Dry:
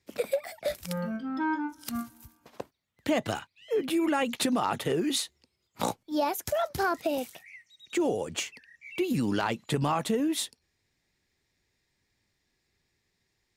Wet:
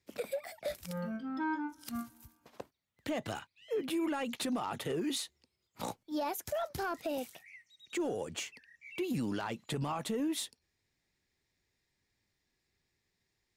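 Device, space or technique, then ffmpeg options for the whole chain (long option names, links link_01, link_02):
soft clipper into limiter: -af "asoftclip=type=tanh:threshold=-17.5dB,alimiter=limit=-22.5dB:level=0:latency=1:release=48,volume=-5dB"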